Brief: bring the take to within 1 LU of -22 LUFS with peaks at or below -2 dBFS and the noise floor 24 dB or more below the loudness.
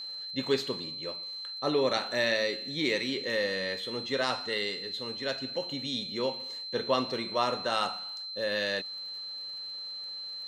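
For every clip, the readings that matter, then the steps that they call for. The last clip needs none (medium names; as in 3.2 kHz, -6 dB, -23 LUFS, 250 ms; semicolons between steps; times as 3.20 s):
tick rate 37 per s; steady tone 4.1 kHz; tone level -37 dBFS; loudness -31.0 LUFS; peak level -13.0 dBFS; loudness target -22.0 LUFS
-> de-click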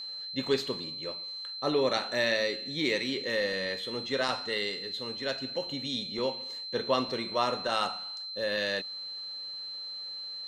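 tick rate 0 per s; steady tone 4.1 kHz; tone level -37 dBFS
-> band-stop 4.1 kHz, Q 30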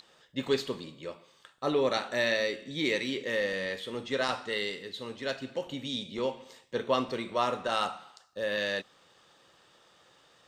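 steady tone not found; loudness -32.0 LUFS; peak level -13.5 dBFS; loudness target -22.0 LUFS
-> trim +10 dB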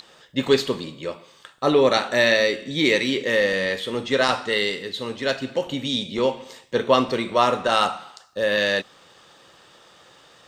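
loudness -22.0 LUFS; peak level -3.5 dBFS; noise floor -53 dBFS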